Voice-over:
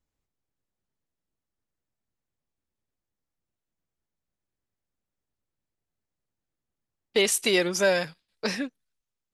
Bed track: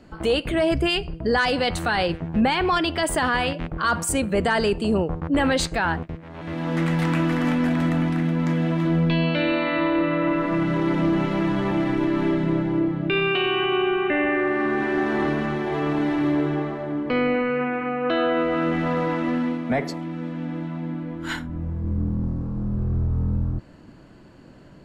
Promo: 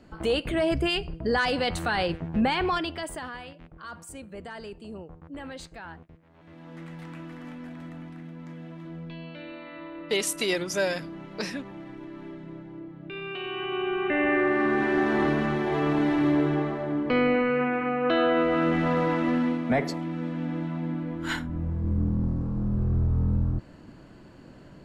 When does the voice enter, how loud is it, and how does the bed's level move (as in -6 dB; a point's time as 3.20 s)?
2.95 s, -4.0 dB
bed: 2.65 s -4 dB
3.45 s -19 dB
12.86 s -19 dB
14.33 s -1 dB